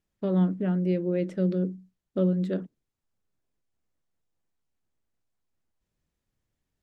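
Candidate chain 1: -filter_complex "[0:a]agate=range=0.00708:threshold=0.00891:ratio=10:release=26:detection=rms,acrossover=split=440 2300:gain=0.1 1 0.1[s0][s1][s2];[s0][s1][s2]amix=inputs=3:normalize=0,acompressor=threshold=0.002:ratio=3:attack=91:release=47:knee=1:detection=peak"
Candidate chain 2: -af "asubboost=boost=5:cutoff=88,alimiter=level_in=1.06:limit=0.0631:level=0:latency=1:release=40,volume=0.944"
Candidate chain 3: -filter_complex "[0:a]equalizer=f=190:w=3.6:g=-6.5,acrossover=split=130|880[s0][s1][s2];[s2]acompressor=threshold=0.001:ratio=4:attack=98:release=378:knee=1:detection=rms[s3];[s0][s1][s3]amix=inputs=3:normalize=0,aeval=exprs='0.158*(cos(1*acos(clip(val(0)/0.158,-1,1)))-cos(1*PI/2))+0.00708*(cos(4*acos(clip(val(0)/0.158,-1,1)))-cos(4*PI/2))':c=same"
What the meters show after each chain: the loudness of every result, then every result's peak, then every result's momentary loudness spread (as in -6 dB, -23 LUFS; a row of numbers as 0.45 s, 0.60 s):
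-47.5 LUFS, -33.0 LUFS, -31.0 LUFS; -29.0 dBFS, -24.5 dBFS, -16.0 dBFS; 6 LU, 9 LU, 6 LU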